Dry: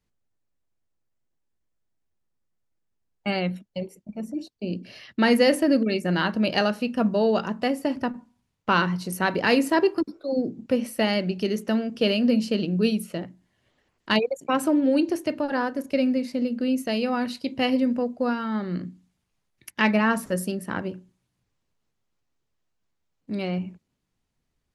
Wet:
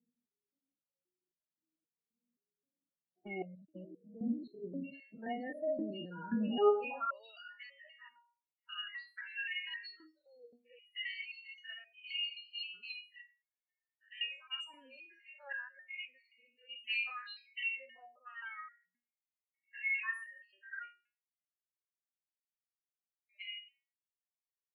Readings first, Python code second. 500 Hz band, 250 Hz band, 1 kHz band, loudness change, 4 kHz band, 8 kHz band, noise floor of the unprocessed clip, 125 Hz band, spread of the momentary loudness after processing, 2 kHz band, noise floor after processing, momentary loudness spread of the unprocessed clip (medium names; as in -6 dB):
-16.0 dB, -21.5 dB, -17.0 dB, -15.0 dB, -10.5 dB, under -30 dB, -77 dBFS, -23.5 dB, 19 LU, -11.0 dB, under -85 dBFS, 13 LU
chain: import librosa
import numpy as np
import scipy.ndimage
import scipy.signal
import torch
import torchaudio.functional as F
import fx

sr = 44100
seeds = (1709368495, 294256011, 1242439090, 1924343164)

p1 = fx.spec_steps(x, sr, hold_ms=100)
p2 = fx.filter_sweep_highpass(p1, sr, from_hz=180.0, to_hz=2100.0, start_s=6.41, end_s=7.25, q=2.2)
p3 = fx.over_compress(p2, sr, threshold_db=-33.0, ratio=-1.0)
p4 = p2 + (p3 * librosa.db_to_amplitude(0.5))
p5 = fx.spec_topn(p4, sr, count=16)
p6 = fx.env_lowpass(p5, sr, base_hz=590.0, full_db=-20.5)
p7 = fx.resonator_held(p6, sr, hz=3.8, low_hz=240.0, high_hz=620.0)
y = p7 * librosa.db_to_amplitude(2.5)